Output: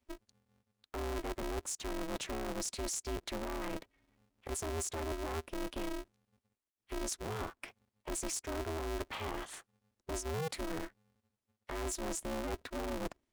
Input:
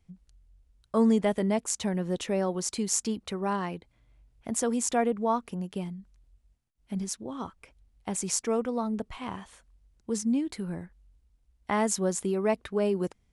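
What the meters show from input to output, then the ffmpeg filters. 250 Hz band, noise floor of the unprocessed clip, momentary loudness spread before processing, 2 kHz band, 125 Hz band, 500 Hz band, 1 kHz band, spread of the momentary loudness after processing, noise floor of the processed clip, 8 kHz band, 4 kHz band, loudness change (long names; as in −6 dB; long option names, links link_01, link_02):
−13.5 dB, −69 dBFS, 13 LU, −4.5 dB, −7.5 dB, −10.5 dB, −9.0 dB, 10 LU, below −85 dBFS, −8.0 dB, −4.0 dB, −10.0 dB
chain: -filter_complex "[0:a]lowshelf=frequency=320:gain=-8,acrossover=split=300[link_01][link_02];[link_02]acompressor=threshold=-44dB:ratio=3[link_03];[link_01][link_03]amix=inputs=2:normalize=0,asoftclip=type=tanh:threshold=-36dB,highpass=110,areverse,acompressor=threshold=-43dB:ratio=10,areverse,afftdn=noise_reduction=16:noise_floor=-65,aeval=exprs='val(0)*sgn(sin(2*PI*160*n/s))':channel_layout=same,volume=8.5dB"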